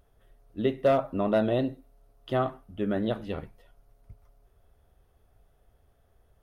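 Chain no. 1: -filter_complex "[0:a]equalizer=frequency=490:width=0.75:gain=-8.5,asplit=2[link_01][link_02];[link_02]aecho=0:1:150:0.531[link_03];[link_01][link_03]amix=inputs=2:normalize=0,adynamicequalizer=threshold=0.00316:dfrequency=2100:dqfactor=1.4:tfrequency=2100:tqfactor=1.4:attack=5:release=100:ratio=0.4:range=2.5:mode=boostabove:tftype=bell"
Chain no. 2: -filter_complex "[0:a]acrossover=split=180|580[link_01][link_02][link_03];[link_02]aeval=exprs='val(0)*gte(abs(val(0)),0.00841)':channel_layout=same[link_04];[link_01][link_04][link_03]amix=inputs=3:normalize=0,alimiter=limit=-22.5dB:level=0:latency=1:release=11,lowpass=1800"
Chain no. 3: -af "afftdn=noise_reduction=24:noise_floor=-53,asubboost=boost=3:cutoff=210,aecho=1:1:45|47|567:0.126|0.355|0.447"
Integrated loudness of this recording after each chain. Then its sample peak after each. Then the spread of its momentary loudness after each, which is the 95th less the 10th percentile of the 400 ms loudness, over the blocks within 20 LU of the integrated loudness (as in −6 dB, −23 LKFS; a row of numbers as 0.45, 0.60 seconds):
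−32.5, −34.0, −28.0 LKFS; −16.5, −22.5, −12.0 dBFS; 16, 10, 17 LU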